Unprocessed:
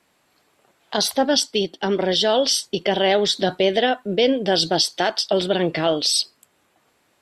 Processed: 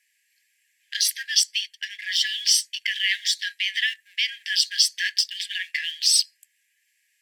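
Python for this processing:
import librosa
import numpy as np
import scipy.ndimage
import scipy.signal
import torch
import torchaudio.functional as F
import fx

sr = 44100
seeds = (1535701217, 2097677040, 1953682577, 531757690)

p1 = fx.peak_eq(x, sr, hz=3800.0, db=-10.0, octaves=0.45)
p2 = np.sign(p1) * np.maximum(np.abs(p1) - 10.0 ** (-35.0 / 20.0), 0.0)
p3 = p1 + F.gain(torch.from_numpy(p2), -2.5).numpy()
y = fx.brickwall_highpass(p3, sr, low_hz=1600.0)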